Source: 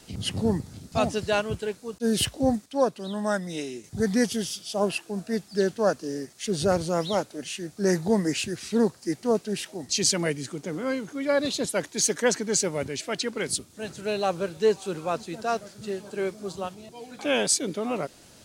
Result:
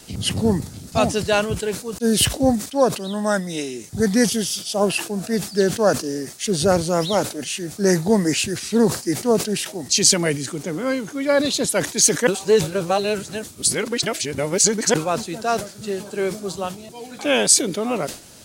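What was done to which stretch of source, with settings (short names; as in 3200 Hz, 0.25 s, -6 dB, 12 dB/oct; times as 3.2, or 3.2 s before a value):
12.27–14.94 reverse
whole clip: high shelf 6900 Hz +6.5 dB; sustainer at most 130 dB/s; gain +5.5 dB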